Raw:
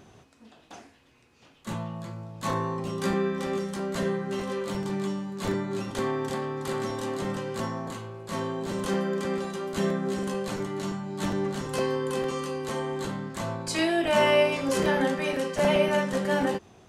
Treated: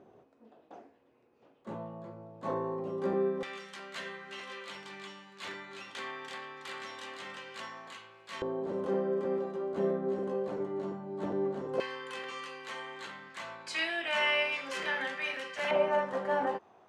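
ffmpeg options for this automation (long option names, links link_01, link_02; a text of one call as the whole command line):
ffmpeg -i in.wav -af "asetnsamples=nb_out_samples=441:pad=0,asendcmd='3.43 bandpass f 2500;8.42 bandpass f 480;11.8 bandpass f 2200;15.71 bandpass f 880',bandpass=frequency=490:width_type=q:width=1.3:csg=0" out.wav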